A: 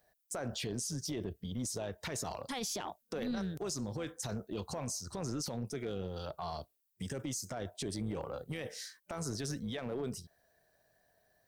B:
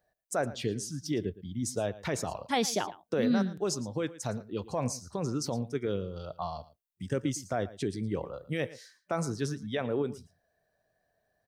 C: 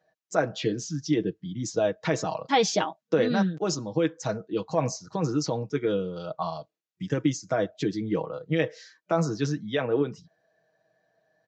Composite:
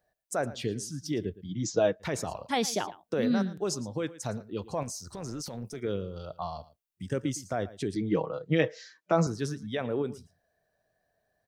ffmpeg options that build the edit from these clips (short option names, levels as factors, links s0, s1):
-filter_complex "[2:a]asplit=2[s0][s1];[1:a]asplit=4[s2][s3][s4][s5];[s2]atrim=end=1.51[s6];[s0]atrim=start=1.47:end=2.03[s7];[s3]atrim=start=1.99:end=4.832[s8];[0:a]atrim=start=4.828:end=5.802[s9];[s4]atrim=start=5.798:end=7.962[s10];[s1]atrim=start=7.958:end=9.272[s11];[s5]atrim=start=9.268[s12];[s6][s7]acrossfade=d=0.04:c1=tri:c2=tri[s13];[s13][s8]acrossfade=d=0.04:c1=tri:c2=tri[s14];[s14][s9]acrossfade=d=0.004:c1=hsin:c2=hsin[s15];[s15][s10]acrossfade=d=0.004:c1=hsin:c2=hsin[s16];[s16][s11]acrossfade=d=0.004:c1=hsin:c2=hsin[s17];[s17][s12]acrossfade=d=0.004:c1=hsin:c2=hsin"